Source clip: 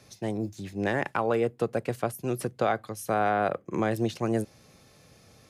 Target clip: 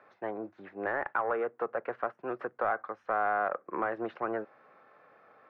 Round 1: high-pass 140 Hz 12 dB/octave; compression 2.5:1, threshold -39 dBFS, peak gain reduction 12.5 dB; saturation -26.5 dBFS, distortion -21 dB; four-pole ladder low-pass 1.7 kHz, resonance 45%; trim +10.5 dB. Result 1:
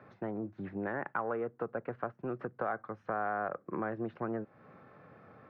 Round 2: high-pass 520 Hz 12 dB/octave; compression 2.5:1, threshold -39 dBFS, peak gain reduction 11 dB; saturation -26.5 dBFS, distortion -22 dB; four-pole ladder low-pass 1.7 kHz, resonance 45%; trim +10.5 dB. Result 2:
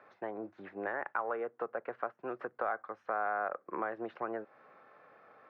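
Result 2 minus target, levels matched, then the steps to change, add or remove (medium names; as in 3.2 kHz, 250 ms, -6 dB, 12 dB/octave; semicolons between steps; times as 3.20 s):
compression: peak gain reduction +7 dB
change: compression 2.5:1, threshold -27.5 dBFS, peak gain reduction 4.5 dB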